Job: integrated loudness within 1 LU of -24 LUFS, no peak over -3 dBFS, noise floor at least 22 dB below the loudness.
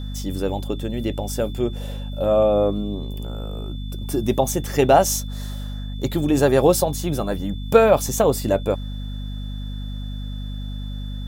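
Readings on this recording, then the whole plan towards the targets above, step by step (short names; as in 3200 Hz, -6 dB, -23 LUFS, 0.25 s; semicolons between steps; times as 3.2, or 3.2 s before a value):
hum 50 Hz; harmonics up to 250 Hz; hum level -27 dBFS; steady tone 3500 Hz; tone level -43 dBFS; loudness -21.5 LUFS; peak -1.0 dBFS; loudness target -24.0 LUFS
-> de-hum 50 Hz, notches 5; notch 3500 Hz, Q 30; gain -2.5 dB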